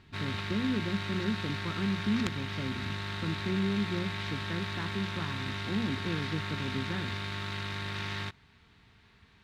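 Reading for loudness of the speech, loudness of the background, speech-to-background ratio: -35.5 LUFS, -36.0 LUFS, 0.5 dB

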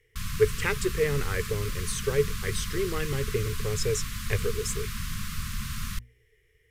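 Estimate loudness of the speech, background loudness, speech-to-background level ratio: -30.0 LUFS, -35.0 LUFS, 5.0 dB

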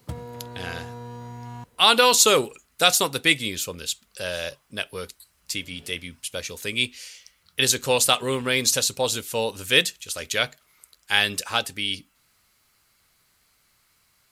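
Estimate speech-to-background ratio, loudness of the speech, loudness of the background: 17.0 dB, -22.0 LUFS, -39.0 LUFS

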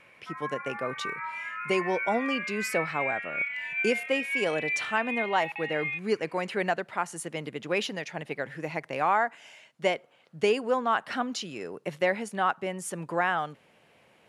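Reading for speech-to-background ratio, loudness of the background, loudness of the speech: 2.0 dB, -32.0 LUFS, -30.0 LUFS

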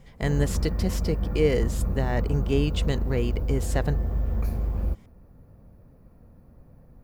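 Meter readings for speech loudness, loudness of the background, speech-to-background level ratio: -28.5 LUFS, -29.0 LUFS, 0.5 dB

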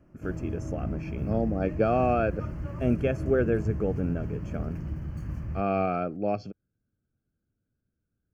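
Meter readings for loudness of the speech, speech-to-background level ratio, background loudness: -29.5 LUFS, 6.0 dB, -35.5 LUFS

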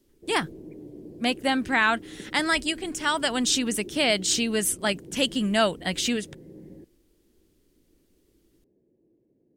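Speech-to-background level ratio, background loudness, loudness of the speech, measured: 19.5 dB, -44.5 LUFS, -25.0 LUFS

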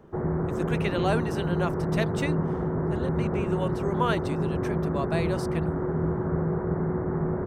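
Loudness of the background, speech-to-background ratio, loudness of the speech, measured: -28.0 LUFS, -4.5 dB, -32.5 LUFS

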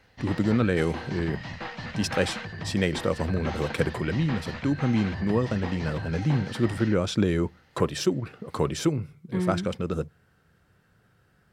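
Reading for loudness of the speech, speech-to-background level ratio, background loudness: -27.5 LUFS, 9.0 dB, -36.5 LUFS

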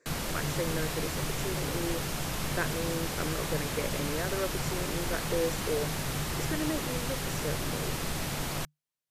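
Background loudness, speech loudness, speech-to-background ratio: -33.0 LUFS, -37.0 LUFS, -4.0 dB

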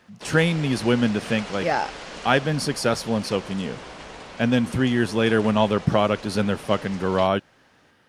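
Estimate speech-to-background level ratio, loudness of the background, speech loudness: 15.0 dB, -38.0 LUFS, -23.0 LUFS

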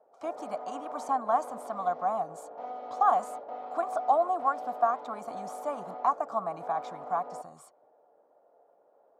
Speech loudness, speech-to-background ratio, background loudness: -31.0 LUFS, 10.0 dB, -41.0 LUFS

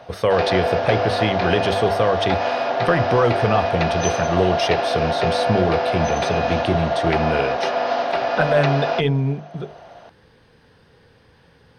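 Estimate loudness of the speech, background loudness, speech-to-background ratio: -22.0 LUFS, -21.5 LUFS, -0.5 dB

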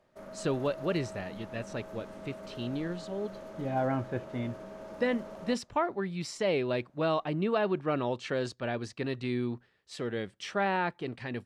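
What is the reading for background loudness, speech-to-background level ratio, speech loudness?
-45.5 LUFS, 12.0 dB, -33.5 LUFS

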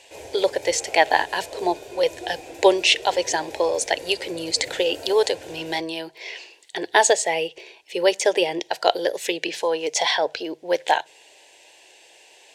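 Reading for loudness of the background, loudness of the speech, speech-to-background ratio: -38.5 LUFS, -22.5 LUFS, 16.0 dB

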